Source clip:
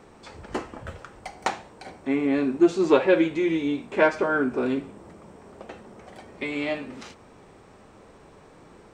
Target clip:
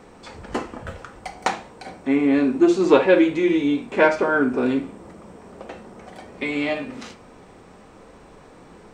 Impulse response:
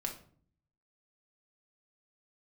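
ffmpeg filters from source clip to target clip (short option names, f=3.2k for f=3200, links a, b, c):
-filter_complex "[0:a]asplit=2[a][b];[1:a]atrim=start_sample=2205,atrim=end_sample=3969[c];[b][c]afir=irnorm=-1:irlink=0,volume=-1.5dB[d];[a][d]amix=inputs=2:normalize=0,volume=-1dB"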